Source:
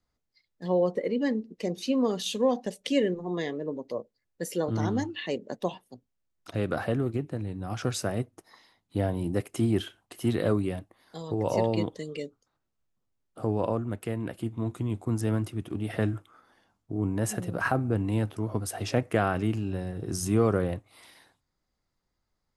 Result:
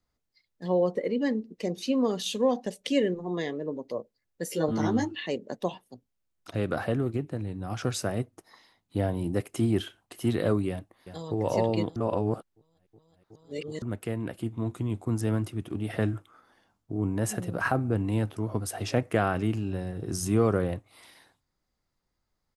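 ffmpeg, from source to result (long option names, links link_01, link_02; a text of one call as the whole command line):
ffmpeg -i in.wav -filter_complex "[0:a]asettb=1/sr,asplit=3[link_01][link_02][link_03];[link_01]atrim=end=4.494[link_04];[link_02]atrim=start=4.49:end=5.15,asetpts=PTS-STARTPTS,afade=type=in:duration=0.004:curve=qsin,afade=type=out:start_time=0.656:duration=0.004:curve=qsin,asplit=2[link_05][link_06];[link_06]adelay=13,volume=-2dB[link_07];[link_05][link_07]amix=inputs=2:normalize=0,atrim=end_sample=29106[link_08];[link_03]atrim=start=5.146[link_09];[link_04][link_08]acrossfade=duration=0.004:curve1=hsin:curve2=qsin[link_10];[link_10][link_09]acrossfade=duration=0.004:curve1=qsin:curve2=hsin,asplit=2[link_11][link_12];[link_12]afade=type=in:start_time=10.69:duration=0.01,afade=type=out:start_time=11.36:duration=0.01,aecho=0:1:370|740|1110|1480|1850|2220:0.281838|0.155011|0.0852561|0.0468908|0.02579|0.0141845[link_13];[link_11][link_13]amix=inputs=2:normalize=0,asplit=3[link_14][link_15][link_16];[link_14]atrim=end=11.962[link_17];[link_15]atrim=start=11.958:end=13.822,asetpts=PTS-STARTPTS,areverse[link_18];[link_16]atrim=start=13.818[link_19];[link_17][link_18]acrossfade=duration=0.004:curve1=hsin:curve2=hsin[link_20];[link_20][link_19]acrossfade=duration=0.004:curve1=hsin:curve2=hsin" out.wav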